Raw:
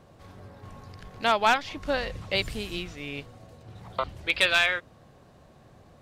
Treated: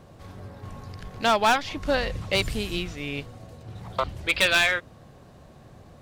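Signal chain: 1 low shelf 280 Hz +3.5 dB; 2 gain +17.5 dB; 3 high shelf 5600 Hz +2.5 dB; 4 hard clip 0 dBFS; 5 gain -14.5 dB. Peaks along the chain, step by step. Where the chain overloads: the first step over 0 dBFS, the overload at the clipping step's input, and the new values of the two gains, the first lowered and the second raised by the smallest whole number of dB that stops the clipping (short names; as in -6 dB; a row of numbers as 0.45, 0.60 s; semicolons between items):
-10.5, +7.0, +7.0, 0.0, -14.5 dBFS; step 2, 7.0 dB; step 2 +10.5 dB, step 5 -7.5 dB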